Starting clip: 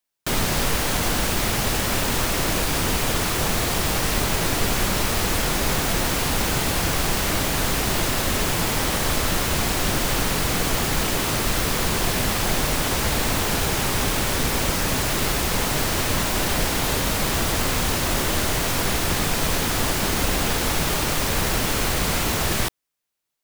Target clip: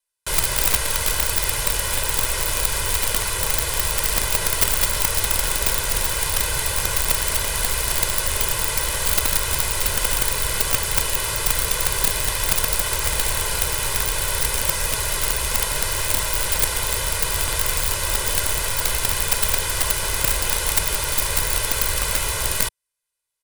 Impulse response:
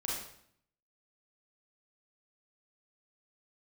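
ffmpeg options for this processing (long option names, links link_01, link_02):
-af "lowpass=frequency=12000:width=0.5412,lowpass=frequency=12000:width=1.3066,equalizer=frequency=240:width_type=o:width=2.1:gain=-10,aecho=1:1:2:0.83,aeval=exprs='(mod(3.98*val(0)+1,2)-1)/3.98':channel_layout=same,aexciter=amount=2.1:drive=5.1:freq=8500,acrusher=bits=4:mode=log:mix=0:aa=0.000001,volume=-3dB"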